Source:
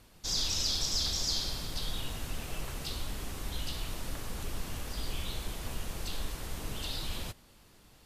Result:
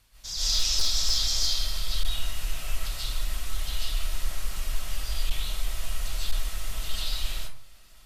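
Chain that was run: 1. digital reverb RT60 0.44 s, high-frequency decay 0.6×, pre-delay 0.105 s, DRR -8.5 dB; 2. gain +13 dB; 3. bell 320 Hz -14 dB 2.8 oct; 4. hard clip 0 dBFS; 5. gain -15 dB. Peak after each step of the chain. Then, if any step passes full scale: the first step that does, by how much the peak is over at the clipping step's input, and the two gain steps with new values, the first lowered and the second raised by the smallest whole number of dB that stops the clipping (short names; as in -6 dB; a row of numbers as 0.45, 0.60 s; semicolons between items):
-7.5, +5.5, +5.0, 0.0, -15.0 dBFS; step 2, 5.0 dB; step 2 +8 dB, step 5 -10 dB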